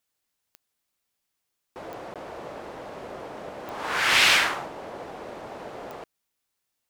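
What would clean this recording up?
click removal
repair the gap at 0:02.14, 17 ms

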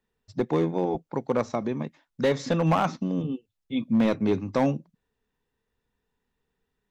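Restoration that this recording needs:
clipped peaks rebuilt −16 dBFS

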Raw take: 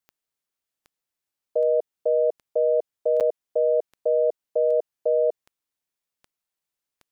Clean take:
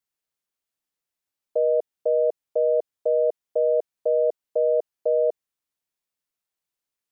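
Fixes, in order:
click removal
repair the gap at 0:03.20, 7.5 ms

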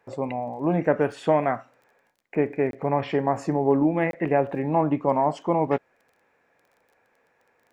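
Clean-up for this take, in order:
click removal
repair the gap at 0:02.71/0:04.11, 22 ms

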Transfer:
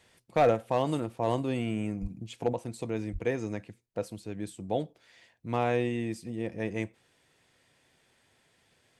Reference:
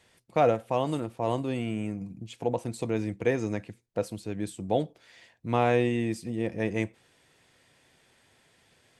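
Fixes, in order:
clipped peaks rebuilt −16 dBFS
0:02.01–0:02.13: high-pass filter 140 Hz 24 dB per octave
0:03.12–0:03.24: high-pass filter 140 Hz 24 dB per octave
level 0 dB, from 0:02.53 +4 dB

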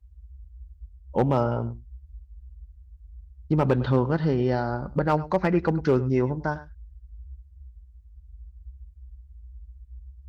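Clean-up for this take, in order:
clipped peaks rebuilt −12.5 dBFS
noise reduction from a noise print 20 dB
echo removal 103 ms −17 dB

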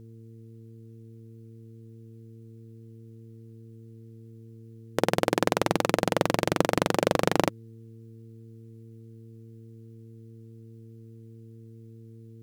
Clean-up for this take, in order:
hum removal 113.1 Hz, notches 4

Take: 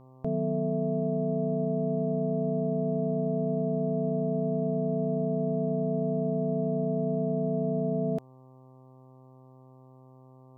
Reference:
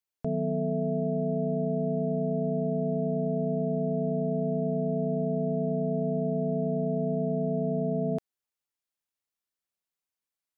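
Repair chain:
hum removal 129.8 Hz, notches 9

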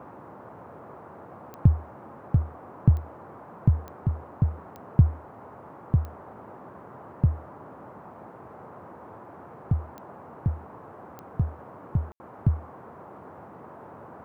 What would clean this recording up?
click removal
ambience match 0:12.12–0:12.20
noise reduction from a noise print 27 dB

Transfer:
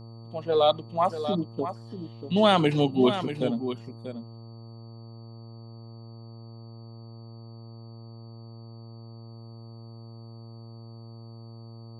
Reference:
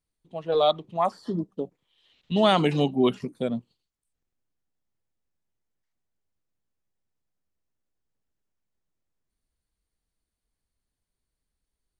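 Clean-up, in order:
hum removal 114.4 Hz, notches 11
notch filter 4,500 Hz, Q 30
echo removal 638 ms −10 dB

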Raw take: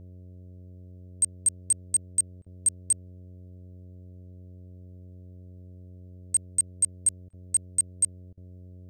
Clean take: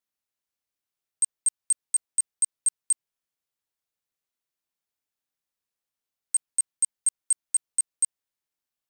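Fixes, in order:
hum removal 90.8 Hz, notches 7
repair the gap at 0:02.42/0:07.29/0:08.33, 42 ms

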